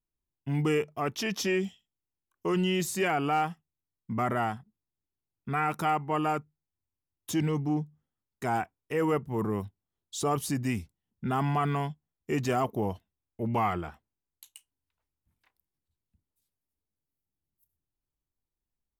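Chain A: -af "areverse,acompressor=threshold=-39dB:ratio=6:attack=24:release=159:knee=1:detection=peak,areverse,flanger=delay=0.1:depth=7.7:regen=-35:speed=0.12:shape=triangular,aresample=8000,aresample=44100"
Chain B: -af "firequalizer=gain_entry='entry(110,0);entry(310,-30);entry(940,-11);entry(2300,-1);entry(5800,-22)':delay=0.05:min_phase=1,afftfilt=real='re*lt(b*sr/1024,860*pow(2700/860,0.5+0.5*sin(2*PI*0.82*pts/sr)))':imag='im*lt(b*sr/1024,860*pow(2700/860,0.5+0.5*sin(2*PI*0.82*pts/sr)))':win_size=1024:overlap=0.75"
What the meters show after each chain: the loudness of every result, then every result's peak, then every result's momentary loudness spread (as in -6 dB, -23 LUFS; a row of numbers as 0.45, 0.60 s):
-45.0, -41.0 LUFS; -28.5, -25.5 dBFS; 10, 12 LU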